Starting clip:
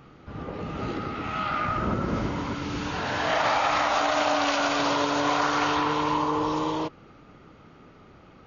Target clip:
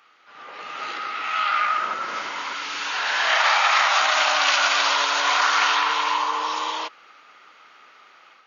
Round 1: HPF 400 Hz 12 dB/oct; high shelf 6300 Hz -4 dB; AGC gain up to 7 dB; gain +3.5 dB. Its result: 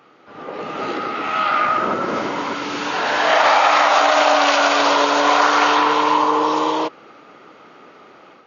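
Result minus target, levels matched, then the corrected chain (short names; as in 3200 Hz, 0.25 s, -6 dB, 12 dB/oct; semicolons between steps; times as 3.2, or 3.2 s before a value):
500 Hz band +10.0 dB
HPF 1400 Hz 12 dB/oct; high shelf 6300 Hz -4 dB; AGC gain up to 7 dB; gain +3.5 dB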